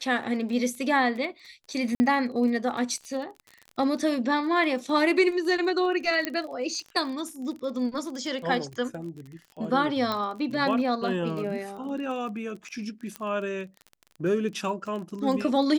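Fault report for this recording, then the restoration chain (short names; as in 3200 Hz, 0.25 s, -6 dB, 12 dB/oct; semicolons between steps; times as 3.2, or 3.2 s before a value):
crackle 27/s -35 dBFS
1.95–2 gap 50 ms
6.25 pop -11 dBFS
10.12 pop -16 dBFS
13.16 pop -18 dBFS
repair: de-click; interpolate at 1.95, 50 ms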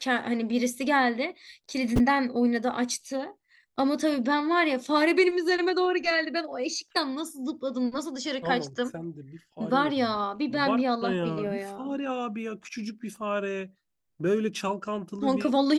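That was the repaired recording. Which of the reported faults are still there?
13.16 pop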